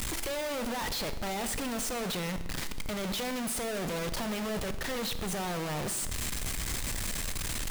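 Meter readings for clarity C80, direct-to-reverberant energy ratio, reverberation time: 14.5 dB, 10.5 dB, 1.1 s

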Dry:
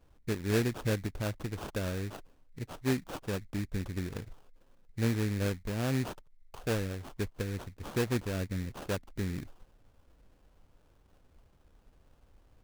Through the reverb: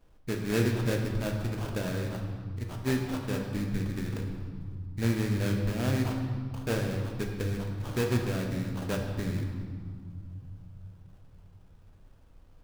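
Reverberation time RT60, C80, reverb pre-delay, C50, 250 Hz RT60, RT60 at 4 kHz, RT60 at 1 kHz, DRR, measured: 2.2 s, 5.0 dB, 3 ms, 4.0 dB, 3.7 s, 1.4 s, 2.2 s, 1.5 dB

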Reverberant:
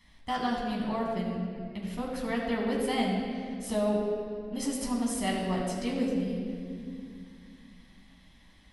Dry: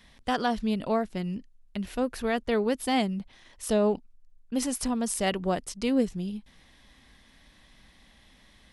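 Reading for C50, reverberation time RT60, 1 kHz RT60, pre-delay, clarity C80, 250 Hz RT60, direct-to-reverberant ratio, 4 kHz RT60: 1.5 dB, 2.3 s, 2.0 s, 11 ms, 2.5 dB, 3.6 s, −4.0 dB, 1.7 s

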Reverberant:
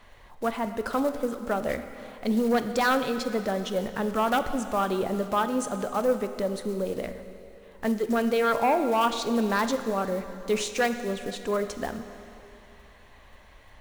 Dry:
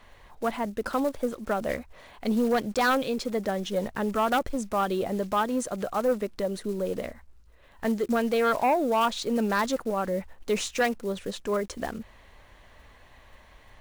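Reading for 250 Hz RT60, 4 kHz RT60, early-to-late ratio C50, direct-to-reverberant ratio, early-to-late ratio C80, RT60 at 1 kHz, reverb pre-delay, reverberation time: 2.9 s, 2.6 s, 9.5 dB, 8.5 dB, 10.5 dB, 2.7 s, 7 ms, 2.8 s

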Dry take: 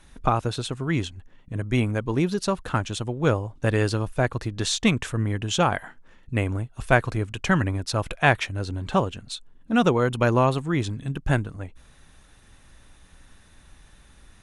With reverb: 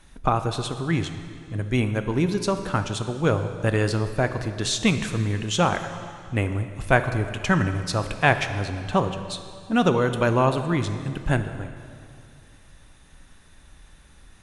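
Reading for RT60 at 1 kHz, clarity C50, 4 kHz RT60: 2.3 s, 9.5 dB, 2.1 s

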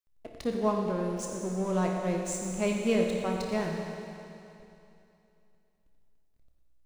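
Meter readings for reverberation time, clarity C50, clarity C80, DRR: 2.8 s, 1.5 dB, 2.5 dB, 0.0 dB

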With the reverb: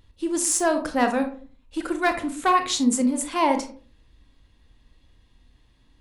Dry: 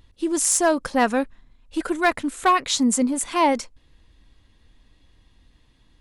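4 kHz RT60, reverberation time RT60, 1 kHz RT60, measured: 0.25 s, 0.45 s, 0.40 s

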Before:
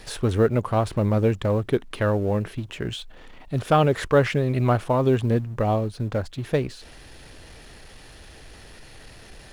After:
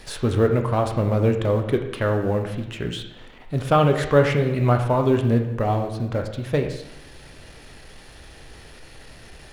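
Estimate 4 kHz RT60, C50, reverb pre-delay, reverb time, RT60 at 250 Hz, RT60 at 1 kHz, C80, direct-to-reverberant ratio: 0.90 s, 7.5 dB, 6 ms, 0.90 s, 0.90 s, 0.95 s, 9.5 dB, 4.0 dB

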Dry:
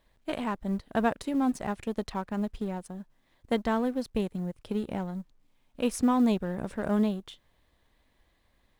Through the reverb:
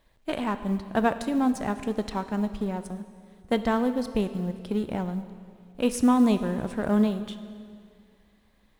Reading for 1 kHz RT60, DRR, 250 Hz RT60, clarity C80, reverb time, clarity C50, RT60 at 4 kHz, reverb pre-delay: 2.1 s, 10.5 dB, 2.3 s, 12.5 dB, 2.2 s, 11.5 dB, 2.0 s, 14 ms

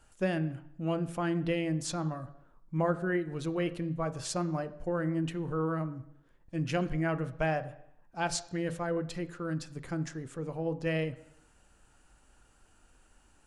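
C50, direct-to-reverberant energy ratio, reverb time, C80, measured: 15.5 dB, 11.5 dB, 0.70 s, 18.0 dB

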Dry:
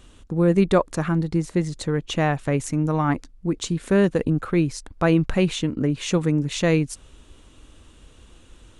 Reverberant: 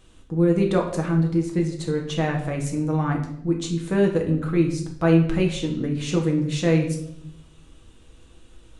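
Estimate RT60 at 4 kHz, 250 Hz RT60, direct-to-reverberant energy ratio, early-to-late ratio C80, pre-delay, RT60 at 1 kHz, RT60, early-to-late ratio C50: 0.65 s, 1.1 s, 0.5 dB, 11.0 dB, 6 ms, 0.60 s, 0.75 s, 8.0 dB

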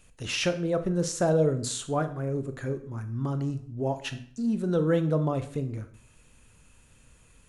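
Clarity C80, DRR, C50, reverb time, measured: 16.5 dB, 9.0 dB, 13.0 dB, 0.55 s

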